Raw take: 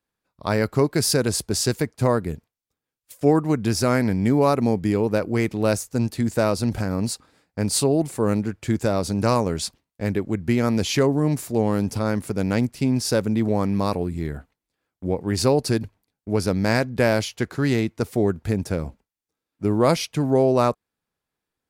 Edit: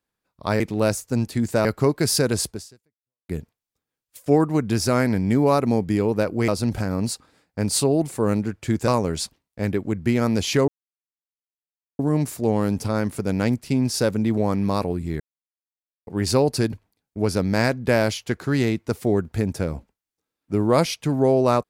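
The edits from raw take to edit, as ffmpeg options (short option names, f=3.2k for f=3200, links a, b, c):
-filter_complex "[0:a]asplit=9[a][b][c][d][e][f][g][h][i];[a]atrim=end=0.602[j];[b]atrim=start=5.428:end=6.482[k];[c]atrim=start=0.598:end=2.24,asetpts=PTS-STARTPTS,afade=t=out:st=0.852:d=0.79:c=exp[l];[d]atrim=start=2.24:end=5.432,asetpts=PTS-STARTPTS,afade=t=in:d=0.004:c=hsin[m];[e]atrim=start=6.478:end=8.882[n];[f]atrim=start=9.298:end=11.1,asetpts=PTS-STARTPTS,afade=t=out:st=1.798:d=0.004:c=hsin,apad=pad_dur=1.31[o];[g]atrim=start=11.1:end=14.31,asetpts=PTS-STARTPTS,afade=t=in:d=0.004:c=hsin,afade=t=out:st=3.206:d=0.004:c=hsin[p];[h]atrim=start=14.31:end=15.18,asetpts=PTS-STARTPTS,volume=0[q];[i]atrim=start=15.18,asetpts=PTS-STARTPTS,afade=t=in:d=0.004:c=hsin[r];[j][k]acrossfade=d=0.004:c1=hsin:c2=hsin[s];[l][m]concat=n=2:v=0:a=1[t];[s][t]acrossfade=d=0.004:c1=hsin:c2=hsin[u];[u][n]acrossfade=d=0.004:c1=hsin:c2=hsin[v];[o][p][q][r]concat=n=4:v=0:a=1[w];[v][w]acrossfade=d=0.004:c1=hsin:c2=hsin"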